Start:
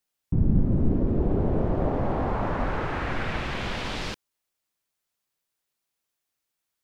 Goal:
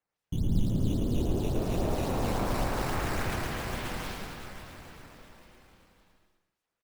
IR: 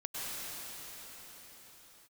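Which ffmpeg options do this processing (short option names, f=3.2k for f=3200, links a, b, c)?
-filter_complex "[0:a]asettb=1/sr,asplit=3[a][b][c];[a]atrim=end=1.564[d];[b]atrim=start=1.56:end=3.35,asetpts=PTS-STARTPTS,afade=t=in:d=0.004:c=qsin,afade=t=out:st=1.786:d=0.004:c=qsin,aeval=exprs='val(0)+0.5*0.0299*sgn(val(0))':c=same[e];[c]atrim=start=3.346[f];[d][e]acrossfade=d=0.004:c1=hsin:c2=qsin[g];[g][f]acrossfade=d=0.004:c1=qsin:c2=hsin,asplit=2[h][i];[1:a]atrim=start_sample=2205,adelay=147[j];[i][j]afir=irnorm=-1:irlink=0,volume=-11dB[k];[h][k]amix=inputs=2:normalize=0,acrusher=samples=8:mix=1:aa=0.000001:lfo=1:lforange=12.8:lforate=3.6,aecho=1:1:110|192.5|254.4|300.8|335.6:0.631|0.398|0.251|0.158|0.1,volume=-8dB"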